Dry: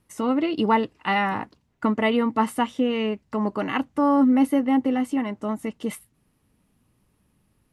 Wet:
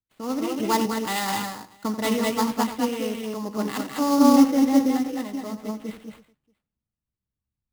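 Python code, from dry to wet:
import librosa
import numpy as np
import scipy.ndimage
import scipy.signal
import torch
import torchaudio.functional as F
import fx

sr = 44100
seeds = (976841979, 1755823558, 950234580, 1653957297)

y = fx.echo_multitap(x, sr, ms=(88, 201, 215, 331, 635), db=(-11.0, -5.0, -4.0, -14.5, -19.5))
y = fx.sample_hold(y, sr, seeds[0], rate_hz=5800.0, jitter_pct=20)
y = fx.band_widen(y, sr, depth_pct=70)
y = y * 10.0 ** (-4.0 / 20.0)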